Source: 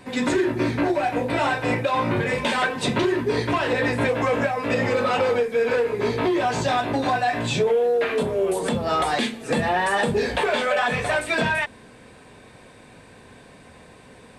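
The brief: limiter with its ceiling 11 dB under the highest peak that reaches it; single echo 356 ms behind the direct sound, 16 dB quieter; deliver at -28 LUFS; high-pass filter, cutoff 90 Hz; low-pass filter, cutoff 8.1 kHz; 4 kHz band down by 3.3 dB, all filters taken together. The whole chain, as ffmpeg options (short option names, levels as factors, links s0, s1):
-af "highpass=90,lowpass=8100,equalizer=f=4000:t=o:g=-4,alimiter=limit=0.0891:level=0:latency=1,aecho=1:1:356:0.158,volume=1.06"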